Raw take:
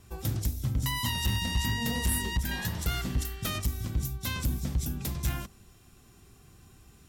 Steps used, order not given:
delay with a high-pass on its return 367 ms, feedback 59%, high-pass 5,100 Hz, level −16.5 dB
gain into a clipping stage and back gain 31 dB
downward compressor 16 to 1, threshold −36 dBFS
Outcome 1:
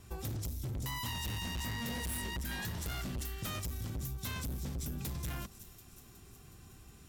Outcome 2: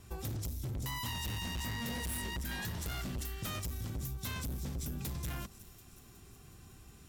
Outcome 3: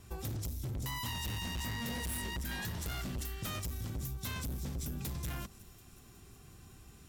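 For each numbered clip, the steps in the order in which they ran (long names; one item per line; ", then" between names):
delay with a high-pass on its return, then gain into a clipping stage and back, then downward compressor
gain into a clipping stage and back, then delay with a high-pass on its return, then downward compressor
gain into a clipping stage and back, then downward compressor, then delay with a high-pass on its return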